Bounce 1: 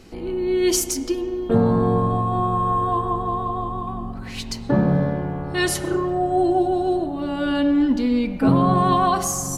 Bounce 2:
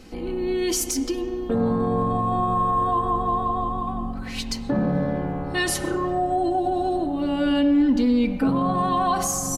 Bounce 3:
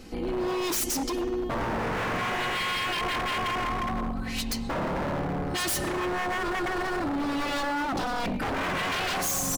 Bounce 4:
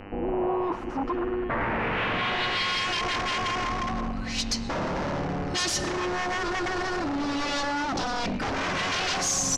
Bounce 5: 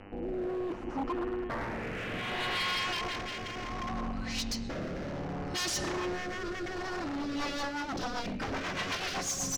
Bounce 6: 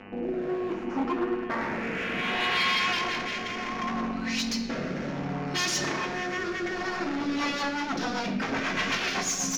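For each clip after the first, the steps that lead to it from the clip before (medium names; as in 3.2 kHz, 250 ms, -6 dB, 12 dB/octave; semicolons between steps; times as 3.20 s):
peak limiter -15 dBFS, peak gain reduction 9.5 dB; comb 3.9 ms, depth 38%
wavefolder -24 dBFS; treble shelf 11 kHz +4 dB
low-pass sweep 810 Hz -> 5.9 kHz, 0.53–2.84 s; mains buzz 100 Hz, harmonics 30, -46 dBFS -3 dB/octave
hard clipper -24 dBFS, distortion -20 dB; rotary cabinet horn 0.65 Hz, later 8 Hz, at 6.94 s; trim -4 dB
reverberation RT60 0.90 s, pre-delay 3 ms, DRR 5.5 dB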